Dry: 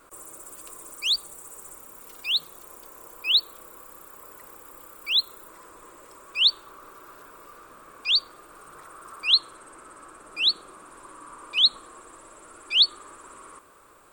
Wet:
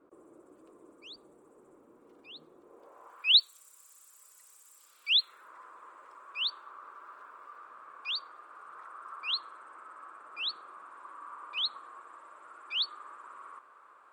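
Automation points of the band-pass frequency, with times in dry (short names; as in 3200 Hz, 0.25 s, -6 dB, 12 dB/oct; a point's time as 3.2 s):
band-pass, Q 1.6
2.64 s 310 Hz
3.18 s 1300 Hz
3.5 s 6800 Hz
4.74 s 6800 Hz
5.54 s 1200 Hz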